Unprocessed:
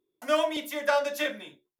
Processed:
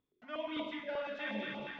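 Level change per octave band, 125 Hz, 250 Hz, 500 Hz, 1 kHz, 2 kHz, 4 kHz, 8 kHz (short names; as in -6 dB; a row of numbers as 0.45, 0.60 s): n/a, -5.0 dB, -13.0 dB, -13.5 dB, -9.5 dB, -11.0 dB, under -30 dB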